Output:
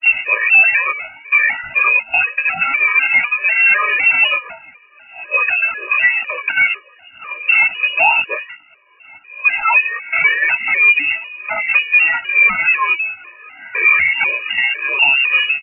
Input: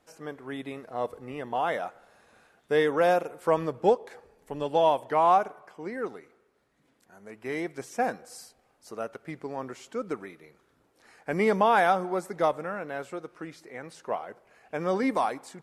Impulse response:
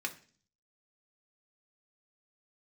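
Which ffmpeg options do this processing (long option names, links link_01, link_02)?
-filter_complex "[0:a]areverse,bandreject=frequency=302.5:width_type=h:width=4,bandreject=frequency=605:width_type=h:width=4,bandreject=frequency=907.5:width_type=h:width=4,bandreject=frequency=1210:width_type=h:width=4,bandreject=frequency=1512.5:width_type=h:width=4,agate=range=-11dB:threshold=-47dB:ratio=16:detection=peak,equalizer=frequency=130:width_type=o:width=2:gain=6.5,acompressor=threshold=-38dB:ratio=3,aphaser=in_gain=1:out_gain=1:delay=4.9:decay=0.7:speed=0.13:type=triangular,asoftclip=type=hard:threshold=-30dB,flanger=delay=16:depth=3.7:speed=0.54,lowpass=frequency=2500:width_type=q:width=0.5098,lowpass=frequency=2500:width_type=q:width=0.6013,lowpass=frequency=2500:width_type=q:width=0.9,lowpass=frequency=2500:width_type=q:width=2.563,afreqshift=-2900,asplit=2[link_01][link_02];[link_02]adelay=1516,volume=-27dB,highshelf=frequency=4000:gain=-34.1[link_03];[link_01][link_03]amix=inputs=2:normalize=0,alimiter=level_in=36dB:limit=-1dB:release=50:level=0:latency=1,afftfilt=real='re*gt(sin(2*PI*2*pts/sr)*(1-2*mod(floor(b*sr/1024/320),2)),0)':imag='im*gt(sin(2*PI*2*pts/sr)*(1-2*mod(floor(b*sr/1024/320),2)),0)':win_size=1024:overlap=0.75,volume=-1.5dB"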